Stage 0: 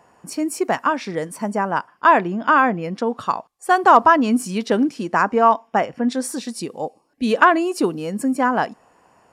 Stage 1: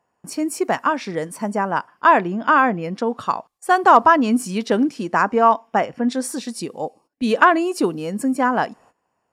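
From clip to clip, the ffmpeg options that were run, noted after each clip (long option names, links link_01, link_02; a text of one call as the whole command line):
ffmpeg -i in.wav -af "agate=range=-17dB:threshold=-49dB:ratio=16:detection=peak" out.wav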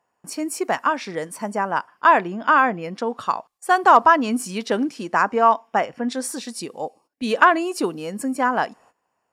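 ffmpeg -i in.wav -af "lowshelf=frequency=380:gain=-7" out.wav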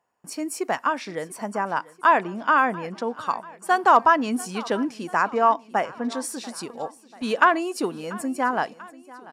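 ffmpeg -i in.wav -af "aecho=1:1:689|1378|2067|2756:0.0944|0.0529|0.0296|0.0166,volume=-3dB" out.wav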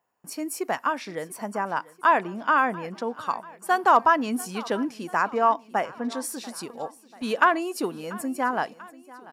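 ffmpeg -i in.wav -af "aexciter=amount=2.9:drive=2.3:freq=11000,volume=-2dB" out.wav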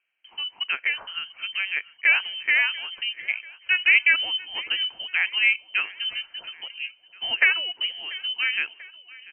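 ffmpeg -i in.wav -af "lowpass=frequency=2800:width_type=q:width=0.5098,lowpass=frequency=2800:width_type=q:width=0.6013,lowpass=frequency=2800:width_type=q:width=0.9,lowpass=frequency=2800:width_type=q:width=2.563,afreqshift=-3300" out.wav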